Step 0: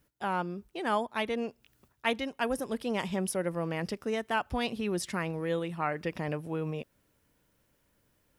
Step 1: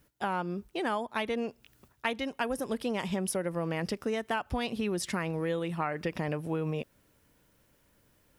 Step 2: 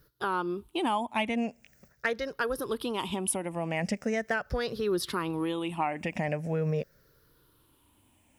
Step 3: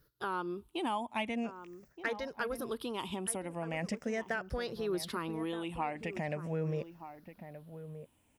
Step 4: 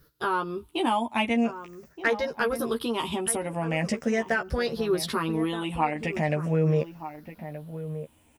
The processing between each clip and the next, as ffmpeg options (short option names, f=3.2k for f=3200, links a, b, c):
-af "acompressor=threshold=-32dB:ratio=6,volume=4.5dB"
-af "afftfilt=real='re*pow(10,13/40*sin(2*PI*(0.59*log(max(b,1)*sr/1024/100)/log(2)-(-0.42)*(pts-256)/sr)))':imag='im*pow(10,13/40*sin(2*PI*(0.59*log(max(b,1)*sr/1024/100)/log(2)-(-0.42)*(pts-256)/sr)))':win_size=1024:overlap=0.75,asoftclip=type=hard:threshold=-15.5dB"
-filter_complex "[0:a]asplit=2[a][b];[b]adelay=1224,volume=-11dB,highshelf=f=4k:g=-27.6[c];[a][c]amix=inputs=2:normalize=0,volume=-6dB"
-filter_complex "[0:a]asplit=2[a][b];[b]adelay=13,volume=-4dB[c];[a][c]amix=inputs=2:normalize=0,volume=8dB"